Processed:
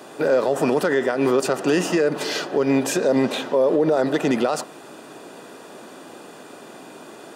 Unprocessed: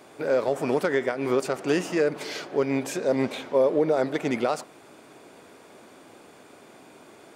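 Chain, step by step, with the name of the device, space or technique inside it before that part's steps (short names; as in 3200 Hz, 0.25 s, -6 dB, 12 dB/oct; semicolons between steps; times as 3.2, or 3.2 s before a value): PA system with an anti-feedback notch (HPF 130 Hz 24 dB/oct; Butterworth band-stop 2200 Hz, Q 7.5; limiter -19.5 dBFS, peak gain reduction 8 dB); gain +9 dB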